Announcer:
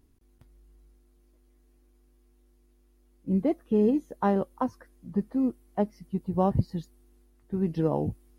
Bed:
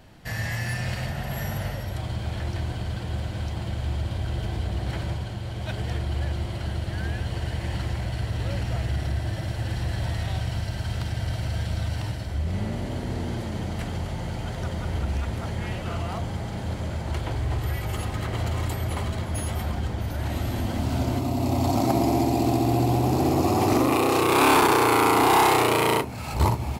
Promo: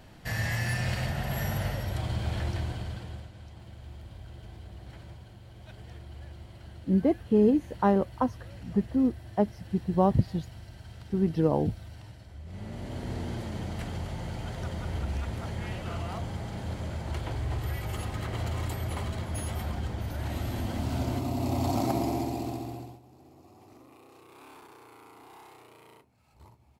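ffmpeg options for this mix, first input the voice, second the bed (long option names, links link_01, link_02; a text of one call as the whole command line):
ffmpeg -i stem1.wav -i stem2.wav -filter_complex "[0:a]adelay=3600,volume=1.5dB[link_01];[1:a]volume=11dB,afade=type=out:start_time=2.39:duration=0.92:silence=0.158489,afade=type=in:start_time=12.44:duration=0.65:silence=0.251189,afade=type=out:start_time=21.79:duration=1.21:silence=0.0375837[link_02];[link_01][link_02]amix=inputs=2:normalize=0" out.wav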